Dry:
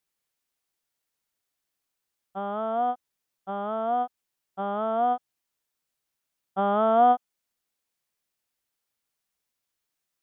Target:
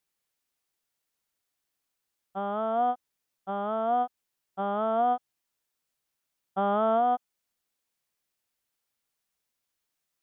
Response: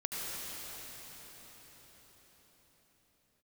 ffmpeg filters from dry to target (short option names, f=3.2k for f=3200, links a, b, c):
-af "alimiter=limit=-16.5dB:level=0:latency=1:release=30"